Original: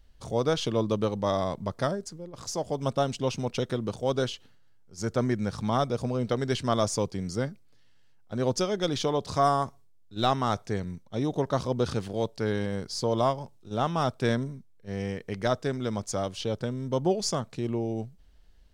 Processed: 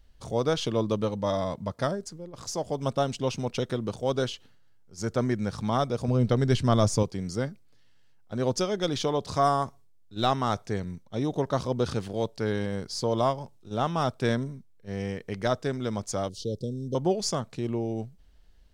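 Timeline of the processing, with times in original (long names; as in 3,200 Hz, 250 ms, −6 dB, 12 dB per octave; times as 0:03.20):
0:01.02–0:01.82: notch comb filter 380 Hz
0:06.08–0:07.03: low-shelf EQ 190 Hz +12 dB
0:16.29–0:16.95: Chebyshev band-stop filter 480–4,100 Hz, order 3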